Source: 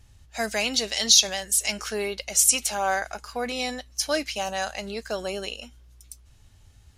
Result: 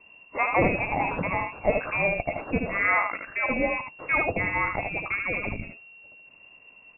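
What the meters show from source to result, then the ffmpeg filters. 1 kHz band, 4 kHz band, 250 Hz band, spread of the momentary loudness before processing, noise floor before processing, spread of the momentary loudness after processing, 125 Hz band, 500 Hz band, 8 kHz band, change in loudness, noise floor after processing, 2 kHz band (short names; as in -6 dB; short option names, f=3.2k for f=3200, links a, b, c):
+3.5 dB, under -25 dB, +3.5 dB, 16 LU, -55 dBFS, 8 LU, n/a, +1.5 dB, under -40 dB, -2.0 dB, -54 dBFS, +6.0 dB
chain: -af "aexciter=amount=3.8:drive=8.2:freq=2k,lowpass=f=2.4k:t=q:w=0.5098,lowpass=f=2.4k:t=q:w=0.6013,lowpass=f=2.4k:t=q:w=0.9,lowpass=f=2.4k:t=q:w=2.563,afreqshift=-2800,aecho=1:1:76:0.562"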